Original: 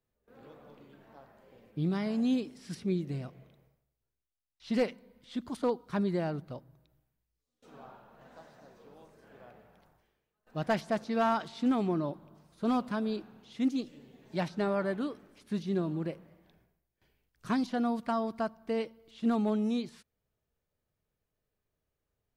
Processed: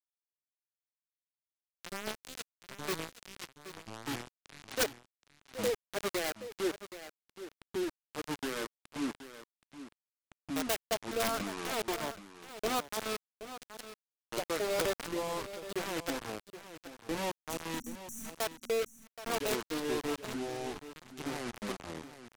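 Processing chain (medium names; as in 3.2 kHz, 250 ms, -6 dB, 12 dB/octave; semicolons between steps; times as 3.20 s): jump at every zero crossing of -44.5 dBFS; resonant low shelf 300 Hz -13.5 dB, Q 3; hum notches 50/100 Hz; Schroeder reverb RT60 1 s, combs from 25 ms, DRR 19 dB; dynamic bell 480 Hz, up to -5 dB, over -41 dBFS, Q 2.2; bit crusher 5-bit; rotary cabinet horn 8 Hz, later 0.9 Hz, at 2.06 s; spectral replace 17.46–18.27 s, 310–5600 Hz both; ever faster or slower copies 225 ms, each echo -5 st, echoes 2; on a send: delay 774 ms -13 dB; on the sum: integer overflow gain 21 dB; trim -1.5 dB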